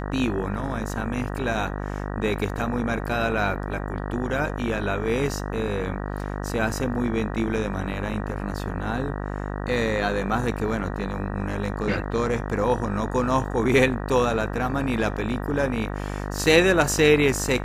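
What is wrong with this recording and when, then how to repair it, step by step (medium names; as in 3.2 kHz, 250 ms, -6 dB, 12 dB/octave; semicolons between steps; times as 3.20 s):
buzz 50 Hz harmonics 38 -30 dBFS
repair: de-hum 50 Hz, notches 38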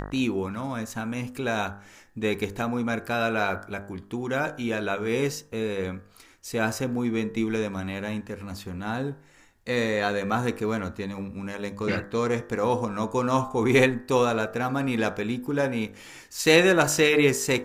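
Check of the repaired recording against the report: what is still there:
nothing left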